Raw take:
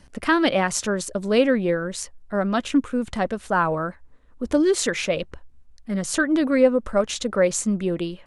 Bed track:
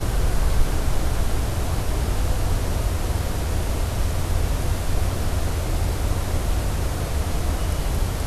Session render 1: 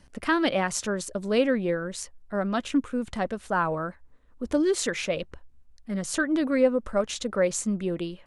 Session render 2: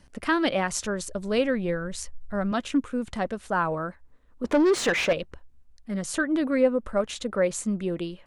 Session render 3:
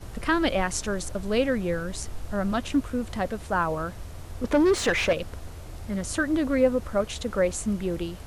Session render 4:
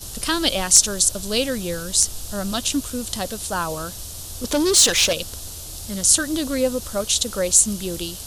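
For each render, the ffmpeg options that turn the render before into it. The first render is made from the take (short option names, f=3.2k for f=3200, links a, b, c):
-af "volume=-4.5dB"
-filter_complex "[0:a]asettb=1/sr,asplit=3[a][b][c];[a]atrim=end=0.404[d];[b]atrim=start=0.4:end=2.52,asetpts=PTS-STARTPTS,afade=t=in:d=0.004:c=qsin,afade=t=out:st=2.116:d=0.004:c=qsin,asubboost=boost=7.5:cutoff=130[e];[c]atrim=start=2.516[f];[d][e]acrossfade=d=0.004:c1=hsin:c2=qsin[g];[g][f]acrossfade=d=0.004:c1=qsin:c2=hsin,asettb=1/sr,asplit=3[h][i][j];[h]atrim=end=4.444[k];[i]atrim=start=4.44:end=5.13,asetpts=PTS-STARTPTS,afade=t=in:d=0.004:c=qsin,afade=t=out:st=0.686:d=0.004:c=qsin,asplit=2[l][m];[m]highpass=f=720:p=1,volume=22dB,asoftclip=type=tanh:threshold=-12.5dB[n];[l][n]amix=inputs=2:normalize=0,lowpass=f=1.7k:p=1,volume=-6dB[o];[j]atrim=start=5.126[p];[k][o]acrossfade=d=0.004:c1=hsin:c2=qsin[q];[q][p]acrossfade=d=0.004:c1=qsin:c2=hsin,asettb=1/sr,asplit=3[r][s][t];[r]atrim=end=6.124[u];[s]atrim=start=6.12:end=7.65,asetpts=PTS-STARTPTS,afade=t=in:d=0.004:c=qsin,afade=t=out:st=1.526:d=0.004:c=qsin,equalizer=f=5.8k:w=1.5:g=-5[v];[t]atrim=start=7.646[w];[u][v]acrossfade=d=0.004:c1=hsin:c2=qsin[x];[x][w]acrossfade=d=0.004:c1=qsin:c2=hsin"
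-filter_complex "[1:a]volume=-16.5dB[a];[0:a][a]amix=inputs=2:normalize=0"
-af "aexciter=amount=7.8:drive=4.9:freq=3.1k,asoftclip=type=hard:threshold=-1.5dB"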